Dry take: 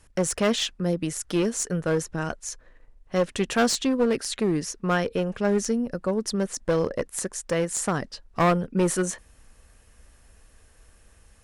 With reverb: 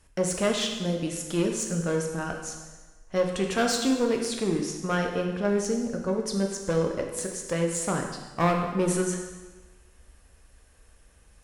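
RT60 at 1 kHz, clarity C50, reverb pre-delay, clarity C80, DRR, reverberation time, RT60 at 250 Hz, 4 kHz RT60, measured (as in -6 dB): 1.3 s, 5.0 dB, 5 ms, 6.5 dB, 2.0 dB, 1.3 s, 1.3 s, 1.2 s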